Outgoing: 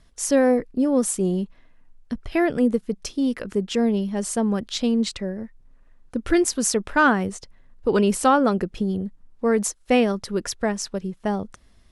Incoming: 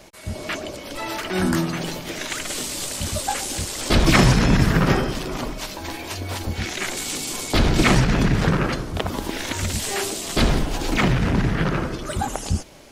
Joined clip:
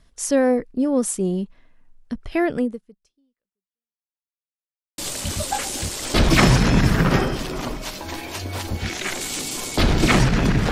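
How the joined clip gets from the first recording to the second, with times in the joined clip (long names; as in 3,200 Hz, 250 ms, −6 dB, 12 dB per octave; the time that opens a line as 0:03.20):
outgoing
0:02.59–0:04.05: fade out exponential
0:04.05–0:04.98: silence
0:04.98: continue with incoming from 0:02.74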